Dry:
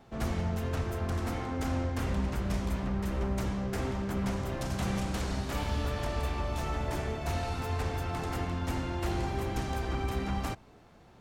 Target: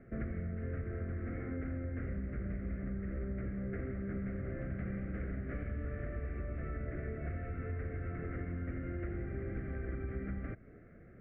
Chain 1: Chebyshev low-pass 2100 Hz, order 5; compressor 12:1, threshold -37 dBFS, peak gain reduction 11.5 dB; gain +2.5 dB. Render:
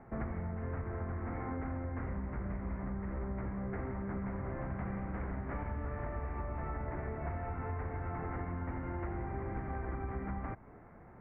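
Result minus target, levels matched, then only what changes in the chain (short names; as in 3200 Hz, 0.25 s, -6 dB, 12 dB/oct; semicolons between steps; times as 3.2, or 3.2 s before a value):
1000 Hz band +11.5 dB
add after compressor: Butterworth band-stop 920 Hz, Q 1.1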